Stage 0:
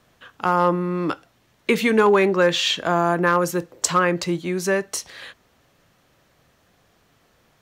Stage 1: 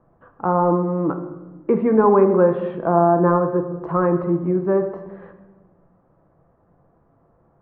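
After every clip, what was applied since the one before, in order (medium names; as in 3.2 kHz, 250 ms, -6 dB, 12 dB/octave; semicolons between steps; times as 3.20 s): low-pass 1.1 kHz 24 dB/octave; simulated room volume 760 m³, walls mixed, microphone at 0.72 m; trim +2 dB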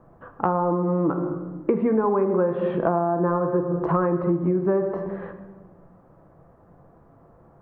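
compression 10:1, threshold -24 dBFS, peak gain reduction 14.5 dB; trim +6 dB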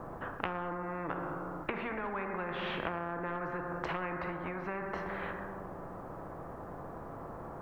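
spectrum-flattening compressor 4:1; trim -8 dB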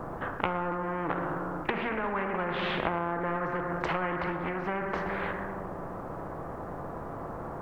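pre-echo 35 ms -21 dB; loudspeaker Doppler distortion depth 0.33 ms; trim +6 dB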